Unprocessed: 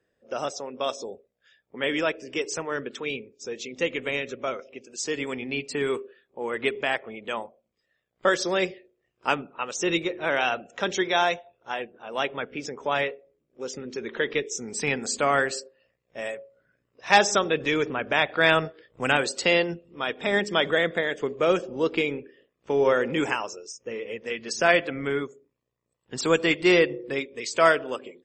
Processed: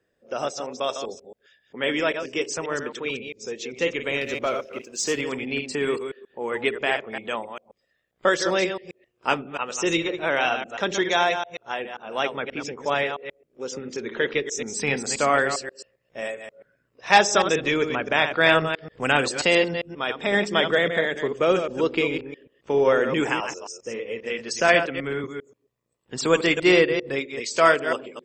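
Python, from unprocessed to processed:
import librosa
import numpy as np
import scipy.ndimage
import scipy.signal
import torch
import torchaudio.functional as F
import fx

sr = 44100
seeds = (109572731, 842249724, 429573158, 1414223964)

y = fx.reverse_delay(x, sr, ms=133, wet_db=-7.5)
y = fx.leveller(y, sr, passes=1, at=(4.21, 5.21))
y = fx.band_widen(y, sr, depth_pct=40, at=(24.68, 25.24))
y = y * librosa.db_to_amplitude(1.5)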